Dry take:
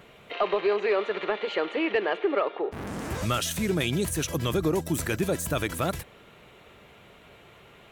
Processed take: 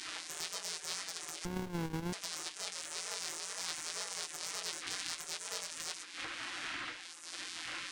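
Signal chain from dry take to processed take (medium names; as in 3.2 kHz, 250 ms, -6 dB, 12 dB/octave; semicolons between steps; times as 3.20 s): sorted samples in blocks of 256 samples; wind noise 520 Hz -37 dBFS; wow and flutter 120 cents; Chebyshev band-pass 410–9500 Hz, order 4; peaking EQ 3.1 kHz +3.5 dB 2.3 oct; compression 8:1, threshold -42 dBFS, peak gain reduction 19.5 dB; Chebyshev shaper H 4 -20 dB, 5 -17 dB, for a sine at -22.5 dBFS; tilt shelf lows -3 dB, about 830 Hz; reverberation RT60 0.55 s, pre-delay 4 ms, DRR 4.5 dB; spectral gate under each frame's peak -15 dB weak; 1.45–2.13 s: sliding maximum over 65 samples; trim +9 dB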